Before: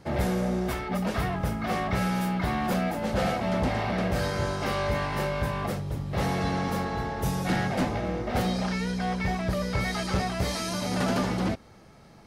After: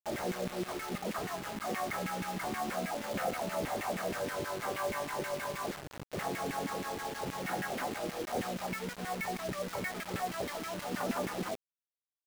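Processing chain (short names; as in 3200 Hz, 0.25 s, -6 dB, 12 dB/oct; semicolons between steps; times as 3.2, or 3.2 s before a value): LFO band-pass saw down 6.3 Hz 240–2400 Hz; bit-crush 7-bit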